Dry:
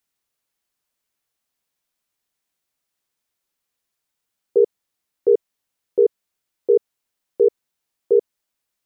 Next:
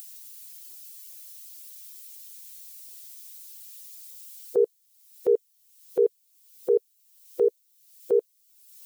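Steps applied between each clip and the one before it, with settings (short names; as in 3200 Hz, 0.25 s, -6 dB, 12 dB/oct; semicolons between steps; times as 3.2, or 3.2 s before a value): per-bin expansion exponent 1.5; tilt +4.5 dB/oct; upward compressor, threshold -26 dBFS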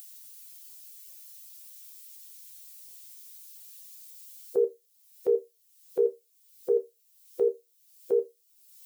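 resonator bank C2 minor, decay 0.2 s; gain +4.5 dB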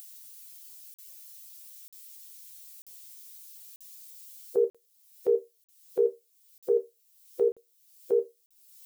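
crackling interface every 0.94 s, samples 2048, zero, from 0.94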